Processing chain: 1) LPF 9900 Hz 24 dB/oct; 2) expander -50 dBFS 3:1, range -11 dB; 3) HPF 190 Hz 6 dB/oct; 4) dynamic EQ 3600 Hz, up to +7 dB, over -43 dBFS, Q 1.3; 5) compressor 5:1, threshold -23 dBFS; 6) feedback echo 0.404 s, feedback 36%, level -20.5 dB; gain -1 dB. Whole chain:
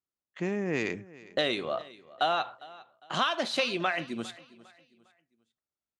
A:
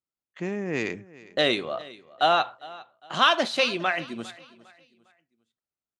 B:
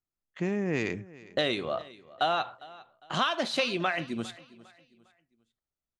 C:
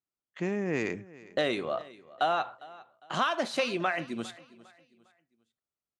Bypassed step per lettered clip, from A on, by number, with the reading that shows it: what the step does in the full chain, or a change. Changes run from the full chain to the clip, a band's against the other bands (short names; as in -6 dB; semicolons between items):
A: 5, mean gain reduction 2.5 dB; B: 3, 125 Hz band +3.5 dB; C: 4, 4 kHz band -5.0 dB